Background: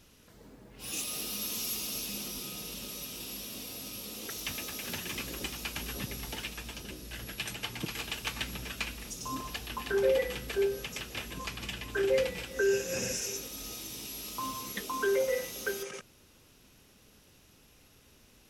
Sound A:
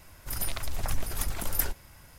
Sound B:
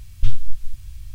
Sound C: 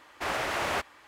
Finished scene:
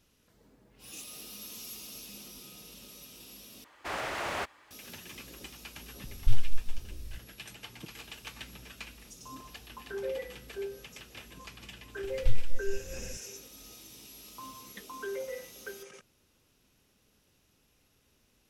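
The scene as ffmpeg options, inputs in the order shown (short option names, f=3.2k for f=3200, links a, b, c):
-filter_complex "[2:a]asplit=2[a][b];[0:a]volume=-9dB,asplit=2[c][d];[c]atrim=end=3.644[e];[3:a]atrim=end=1.07,asetpts=PTS-STARTPTS,volume=-4.5dB[f];[d]atrim=start=4.706[g];[a]atrim=end=1.14,asetpts=PTS-STARTPTS,volume=-6.5dB,afade=t=in:d=0.004:c=hsin,afade=t=out:st=1.136:d=0.004:c=hsin,adelay=6040[h];[b]atrim=end=1.14,asetpts=PTS-STARTPTS,volume=-8.5dB,afade=t=in:d=0.004:c=hsin,afade=t=out:st=1.136:d=0.004:c=hsin,adelay=12030[i];[e][f]acrossfade=d=0.004:c1=hsin:c2=hsin[j];[j][g]acrossfade=d=0.004:c1=hsin:c2=hsin[k];[k][h][i]amix=inputs=3:normalize=0"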